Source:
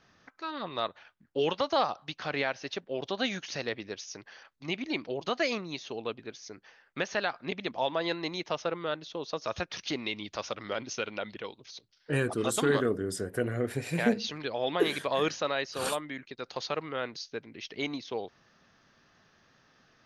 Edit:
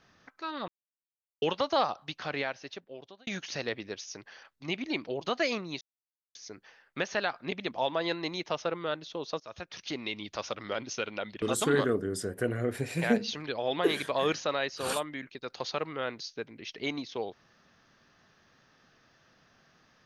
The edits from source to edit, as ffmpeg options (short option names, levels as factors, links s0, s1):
-filter_complex "[0:a]asplit=8[s0][s1][s2][s3][s4][s5][s6][s7];[s0]atrim=end=0.68,asetpts=PTS-STARTPTS,afade=t=out:st=0.676:d=0.004:c=hsin[s8];[s1]atrim=start=0.68:end=1.42,asetpts=PTS-STARTPTS,volume=0[s9];[s2]atrim=start=1.42:end=3.27,asetpts=PTS-STARTPTS,afade=t=in:d=0.004:c=hsin,afade=t=out:st=0.72:d=1.13[s10];[s3]atrim=start=3.27:end=5.81,asetpts=PTS-STARTPTS,afade=t=in:d=0.004:c=hsin,afade=t=out:st=2.536:d=0.004:c=hsin[s11];[s4]atrim=start=5.81:end=6.35,asetpts=PTS-STARTPTS,volume=0[s12];[s5]atrim=start=6.35:end=9.4,asetpts=PTS-STARTPTS,afade=t=in:d=0.004:c=hsin,afade=t=out:st=3.046:d=0.004:c=hsin:silence=0.158489[s13];[s6]atrim=start=9.4:end=11.422,asetpts=PTS-STARTPTS,afade=t=in:d=1.14:c=qsin:silence=0.158489[s14];[s7]atrim=start=12.378[s15];[s8][s9][s10][s11][s12][s13][s14]concat=n=7:v=0:a=1[s16];[s16][s15]acrossfade=d=0.004:c1=hsin:c2=hsin"